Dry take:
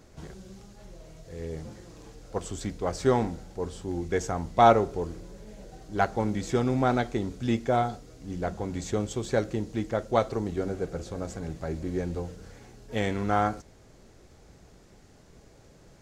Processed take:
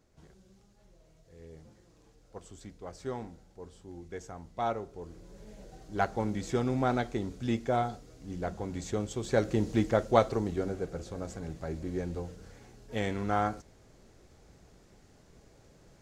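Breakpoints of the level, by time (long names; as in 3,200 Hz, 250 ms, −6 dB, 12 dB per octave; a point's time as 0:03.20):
0:04.92 −14 dB
0:05.43 −4 dB
0:09.16 −4 dB
0:09.70 +4 dB
0:10.88 −4 dB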